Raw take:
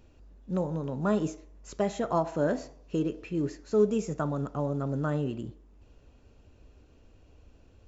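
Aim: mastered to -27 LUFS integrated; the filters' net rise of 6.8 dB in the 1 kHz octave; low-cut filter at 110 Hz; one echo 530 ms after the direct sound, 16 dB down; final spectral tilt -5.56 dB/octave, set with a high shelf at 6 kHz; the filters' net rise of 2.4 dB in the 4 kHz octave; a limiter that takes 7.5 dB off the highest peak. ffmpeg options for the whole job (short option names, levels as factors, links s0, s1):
-af "highpass=110,equalizer=f=1000:t=o:g=8.5,equalizer=f=4000:t=o:g=5.5,highshelf=f=6000:g=-8.5,alimiter=limit=0.133:level=0:latency=1,aecho=1:1:530:0.158,volume=1.58"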